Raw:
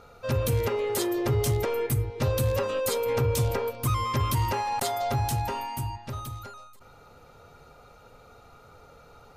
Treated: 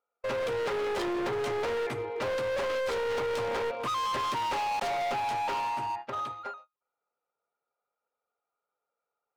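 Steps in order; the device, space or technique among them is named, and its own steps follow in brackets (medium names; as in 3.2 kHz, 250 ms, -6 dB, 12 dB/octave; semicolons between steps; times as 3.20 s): walkie-talkie (band-pass 490–2300 Hz; hard clipper -37 dBFS, distortion -7 dB; gate -45 dBFS, range -41 dB); trim +8 dB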